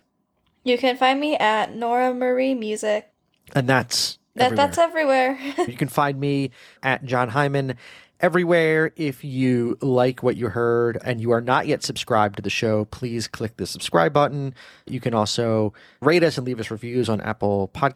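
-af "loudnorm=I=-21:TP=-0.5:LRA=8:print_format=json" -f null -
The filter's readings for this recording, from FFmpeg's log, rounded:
"input_i" : "-21.8",
"input_tp" : "-3.4",
"input_lra" : "1.5",
"input_thresh" : "-32.0",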